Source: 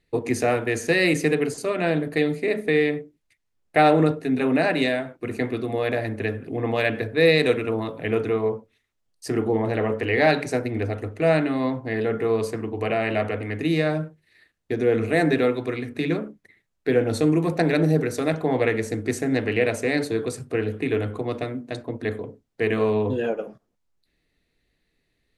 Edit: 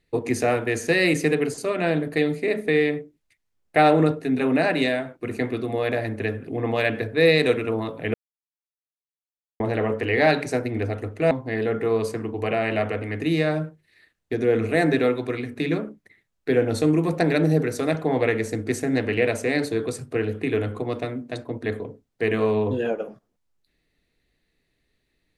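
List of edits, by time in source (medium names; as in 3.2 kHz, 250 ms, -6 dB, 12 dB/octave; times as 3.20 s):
8.14–9.60 s: mute
11.31–11.70 s: delete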